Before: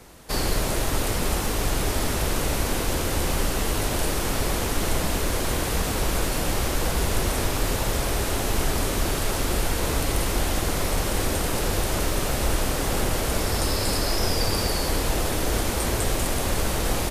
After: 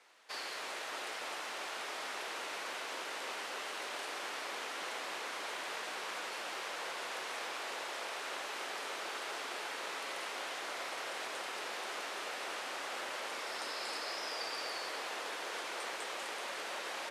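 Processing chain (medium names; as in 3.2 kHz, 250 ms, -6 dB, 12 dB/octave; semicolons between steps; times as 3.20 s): band-pass 370–2200 Hz; differentiator; feedback echo behind a low-pass 291 ms, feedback 73%, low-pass 1.3 kHz, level -3.5 dB; trim +4.5 dB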